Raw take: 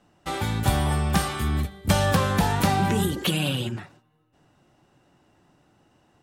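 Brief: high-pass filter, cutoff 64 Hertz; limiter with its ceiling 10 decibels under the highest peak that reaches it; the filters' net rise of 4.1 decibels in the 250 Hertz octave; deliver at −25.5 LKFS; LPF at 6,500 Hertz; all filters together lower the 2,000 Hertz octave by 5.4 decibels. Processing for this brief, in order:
high-pass filter 64 Hz
low-pass filter 6,500 Hz
parametric band 250 Hz +6 dB
parametric band 2,000 Hz −7.5 dB
level +0.5 dB
brickwall limiter −15.5 dBFS

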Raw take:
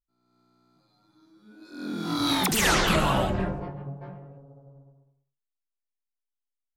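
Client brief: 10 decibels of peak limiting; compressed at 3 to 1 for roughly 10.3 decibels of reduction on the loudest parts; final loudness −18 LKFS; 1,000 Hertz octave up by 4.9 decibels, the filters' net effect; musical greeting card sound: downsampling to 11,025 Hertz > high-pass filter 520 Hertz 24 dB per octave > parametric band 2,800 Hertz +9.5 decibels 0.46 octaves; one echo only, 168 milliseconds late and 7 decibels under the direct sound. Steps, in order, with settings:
parametric band 1,000 Hz +6 dB
downward compressor 3 to 1, threshold −31 dBFS
brickwall limiter −29.5 dBFS
single-tap delay 168 ms −7 dB
downsampling to 11,025 Hz
high-pass filter 520 Hz 24 dB per octave
parametric band 2,800 Hz +9.5 dB 0.46 octaves
level +20.5 dB

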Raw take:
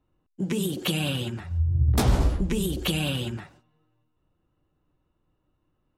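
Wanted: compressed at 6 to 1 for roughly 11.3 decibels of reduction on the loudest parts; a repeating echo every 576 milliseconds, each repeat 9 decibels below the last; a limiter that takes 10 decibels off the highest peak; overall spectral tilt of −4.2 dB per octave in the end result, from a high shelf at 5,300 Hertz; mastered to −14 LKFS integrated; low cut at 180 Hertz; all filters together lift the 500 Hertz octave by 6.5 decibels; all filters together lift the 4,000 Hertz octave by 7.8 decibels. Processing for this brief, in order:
high-pass filter 180 Hz
parametric band 500 Hz +8.5 dB
parametric band 4,000 Hz +8.5 dB
high-shelf EQ 5,300 Hz +5.5 dB
downward compressor 6 to 1, threshold −29 dBFS
brickwall limiter −23.5 dBFS
repeating echo 576 ms, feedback 35%, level −9 dB
level +20 dB

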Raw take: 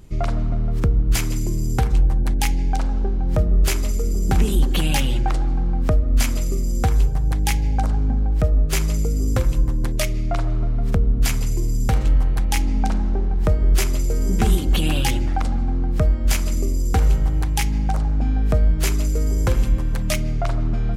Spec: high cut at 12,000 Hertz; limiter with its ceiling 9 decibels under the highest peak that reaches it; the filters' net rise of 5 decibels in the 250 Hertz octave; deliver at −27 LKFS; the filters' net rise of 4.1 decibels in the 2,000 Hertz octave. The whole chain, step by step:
low-pass filter 12,000 Hz
parametric band 250 Hz +6.5 dB
parametric band 2,000 Hz +5 dB
level −4 dB
brickwall limiter −17.5 dBFS

